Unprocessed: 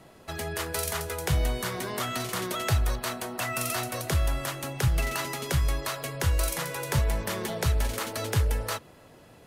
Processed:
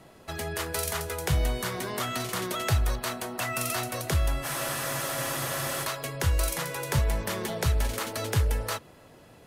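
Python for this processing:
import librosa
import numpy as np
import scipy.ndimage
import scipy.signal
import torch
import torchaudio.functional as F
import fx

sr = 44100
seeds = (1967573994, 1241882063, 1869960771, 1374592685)

y = fx.spec_freeze(x, sr, seeds[0], at_s=4.46, hold_s=1.39)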